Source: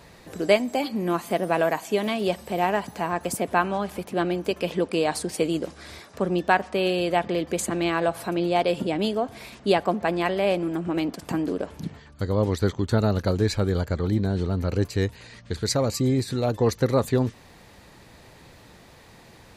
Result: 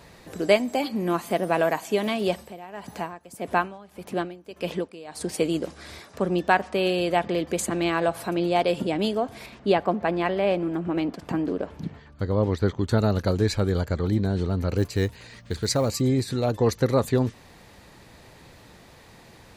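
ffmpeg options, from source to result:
-filter_complex "[0:a]asettb=1/sr,asplit=3[a][b][c];[a]atrim=end=2.364[d];[b]atrim=start=2.36:end=5.21,asetpts=PTS-STARTPTS,afade=t=in:d=0.004:c=qsin,afade=t=out:st=2.846:d=0.004:c=qsin,aeval=exprs='val(0)*pow(10,-19*(0.5-0.5*cos(2*PI*1.7*n/s))/20)':c=same[e];[c]atrim=start=5.206[f];[d][e]acrossfade=d=0.004:c1=hsin:c2=qsin[g];[g][f]acrossfade=d=0.004:c1=qsin:c2=hsin,asettb=1/sr,asplit=3[h][i][j];[h]atrim=end=9.464[k];[i]atrim=start=9.46:end=12.81,asetpts=PTS-STARTPTS,afade=t=in:d=0.004:c=qsin,afade=t=out:st=3.346:d=0.004:c=qsin,equalizer=f=11k:t=o:w=1.8:g=-12.5[l];[j]atrim=start=12.806[m];[k][l]acrossfade=d=0.004:c1=hsin:c2=qsin[n];[n][m]acrossfade=d=0.004:c1=qsin:c2=hsin,asettb=1/sr,asplit=3[o][p][q];[o]atrim=end=14.774[r];[p]atrim=start=14.77:end=16.01,asetpts=PTS-STARTPTS,afade=t=in:d=0.004:c=qsin,afade=t=out:st=1.236:d=0.004:c=qsin,acrusher=bits=8:mode=log:mix=0:aa=0.000001[s];[q]atrim=start=16.006[t];[r][s]acrossfade=d=0.004:c1=hsin:c2=qsin[u];[u][t]acrossfade=d=0.004:c1=qsin:c2=hsin"

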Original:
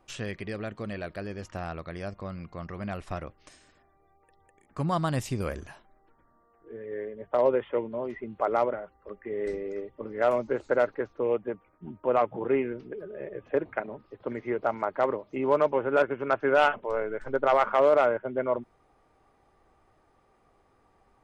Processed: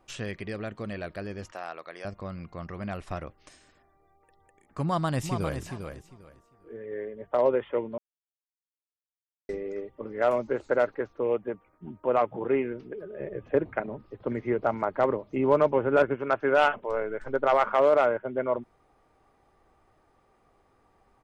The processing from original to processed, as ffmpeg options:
-filter_complex "[0:a]asettb=1/sr,asplit=3[a][b][c];[a]atrim=end=1.524[d];[b]atrim=start=1.52:end=2.05,asetpts=PTS-STARTPTS,afade=t=in:d=0.004:c=qsin,afade=t=out:st=0.526:d=0.004:c=qsin,highpass=490[e];[c]atrim=start=2.046[f];[d][e]acrossfade=d=0.004:c1=hsin:c2=qsin[g];[g][f]acrossfade=d=0.004:c1=qsin:c2=hsin,asplit=2[h][i];[i]afade=t=in:st=4.83:d=0.01,afade=t=out:st=5.61:d=0.01,aecho=0:1:400|800|1200:0.421697|0.0843393|0.0168679[j];[h][j]amix=inputs=2:normalize=0,asettb=1/sr,asplit=3[k][l][m];[k]atrim=end=13.194[n];[l]atrim=start=13.19:end=16.16,asetpts=PTS-STARTPTS,afade=t=in:d=0.004:c=qsin,afade=t=out:st=2.966:d=0.004:c=qsin,lowshelf=f=250:g=9[o];[m]atrim=start=16.156[p];[n][o]acrossfade=d=0.004:c1=hsin:c2=qsin[q];[q][p]acrossfade=d=0.004:c1=qsin:c2=hsin,asplit=3[r][s][t];[r]atrim=end=7.98,asetpts=PTS-STARTPTS,afade=t=out:st=7.976:d=0.004:c=hsin[u];[s]atrim=start=7.98:end=9.49,asetpts=PTS-STARTPTS,volume=0[v];[t]atrim=start=9.49,asetpts=PTS-STARTPTS,afade=t=in:d=0.004:c=hsin[w];[u][v][w]concat=n=3:v=0:a=1"

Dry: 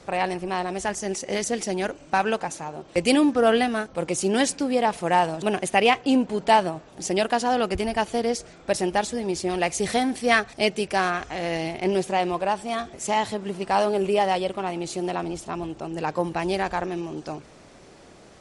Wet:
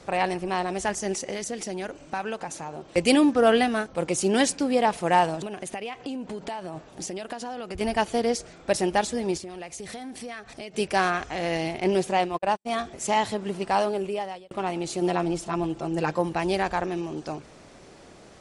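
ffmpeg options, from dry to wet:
-filter_complex "[0:a]asettb=1/sr,asplit=3[a][b][c];[a]atrim=end=1.304[d];[b]atrim=start=1.3:end=2.89,asetpts=PTS-STARTPTS,afade=t=in:d=0.004:c=qsin,afade=t=out:st=1.586:d=0.004:c=qsin,acompressor=threshold=-32dB:ratio=2:attack=3.2:release=140:knee=1:detection=peak[e];[c]atrim=start=2.886[f];[d][e]acrossfade=d=0.004:c1=hsin:c2=qsin[g];[g][f]acrossfade=d=0.004:c1=qsin:c2=hsin,asettb=1/sr,asplit=3[h][i][j];[h]atrim=end=5.424[k];[i]atrim=start=5.42:end=7.81,asetpts=PTS-STARTPTS,afade=t=in:d=0.004:c=qsin,afade=t=out:st=2.386:d=0.004:c=qsin,acompressor=threshold=-29dB:ratio=20:attack=3.2:release=140:knee=1:detection=peak[l];[j]atrim=start=7.806[m];[k][l]acrossfade=d=0.004:c1=hsin:c2=qsin[n];[n][m]acrossfade=d=0.004:c1=qsin:c2=hsin,asettb=1/sr,asplit=3[o][p][q];[o]atrim=end=9.374[r];[p]atrim=start=9.37:end=10.74,asetpts=PTS-STARTPTS,afade=t=in:d=0.004:c=qsin,afade=t=out:st=1.366:d=0.004:c=qsin,acompressor=threshold=-35dB:ratio=6:attack=3.2:release=140:knee=1:detection=peak[s];[q]atrim=start=10.736[t];[r][s]acrossfade=d=0.004:c1=hsin:c2=qsin[u];[u][t]acrossfade=d=0.004:c1=qsin:c2=hsin,asplit=3[v][w][x];[v]afade=t=out:st=12.13:d=0.02[y];[w]agate=range=-54dB:threshold=-26dB:ratio=16:release=100:detection=peak,afade=t=in:st=12.13:d=0.02,afade=t=out:st=12.65:d=0.02[z];[x]afade=t=in:st=12.65:d=0.02[aa];[y][z][aa]amix=inputs=3:normalize=0,asettb=1/sr,asplit=3[ab][ac][ad];[ab]atrim=end=15.014[ae];[ac]atrim=start=15.01:end=16.17,asetpts=PTS-STARTPTS,afade=t=in:d=0.004:c=qsin,afade=t=out:st=1.156:d=0.004:c=qsin,aecho=1:1:5.9:0.67,atrim=end_sample=51156[af];[ad]atrim=start=16.166[ag];[ae][af]acrossfade=d=0.004:c1=hsin:c2=qsin[ah];[ah][ag]acrossfade=d=0.004:c1=qsin:c2=hsin,asplit=2[ai][aj];[ai]atrim=end=14.51,asetpts=PTS-STARTPTS,afade=t=out:st=13.6:d=0.91[ak];[aj]atrim=start=14.51,asetpts=PTS-STARTPTS,afade=t=in:d=0.004:c=hsin[al];[ak][al]concat=n=2:v=0:a=1"

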